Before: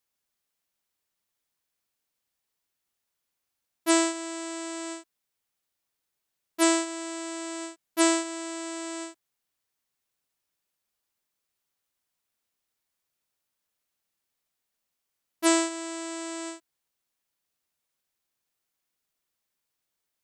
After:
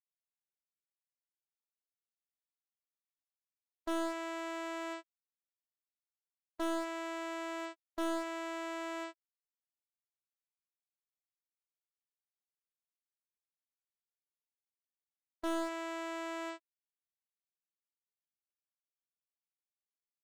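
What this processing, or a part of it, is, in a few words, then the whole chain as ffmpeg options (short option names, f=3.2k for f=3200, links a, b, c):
walkie-talkie: -af "highpass=460,lowpass=3k,asoftclip=type=hard:threshold=-30dB,agate=range=-34dB:threshold=-43dB:ratio=16:detection=peak"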